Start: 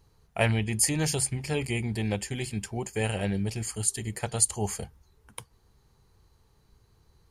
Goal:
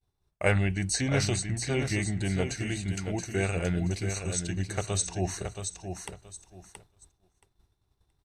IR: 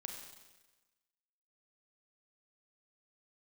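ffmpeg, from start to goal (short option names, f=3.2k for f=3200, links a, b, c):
-filter_complex "[0:a]asetrate=39073,aresample=44100,aecho=1:1:675|1350|2025:0.422|0.097|0.0223,agate=range=-33dB:threshold=-51dB:ratio=3:detection=peak,acrossover=split=6900[a][b];[b]acompressor=threshold=-46dB:ratio=6[c];[a][c]amix=inputs=2:normalize=0"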